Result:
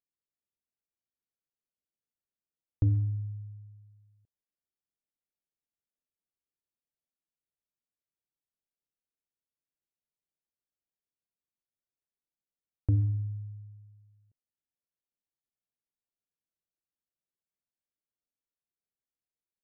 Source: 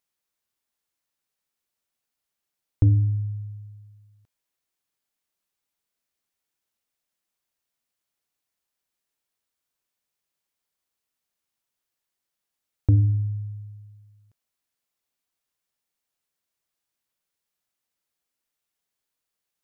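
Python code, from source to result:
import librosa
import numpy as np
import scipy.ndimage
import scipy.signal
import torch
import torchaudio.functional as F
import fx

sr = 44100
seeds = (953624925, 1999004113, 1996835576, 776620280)

y = fx.wiener(x, sr, points=41)
y = F.gain(torch.from_numpy(y), -7.5).numpy()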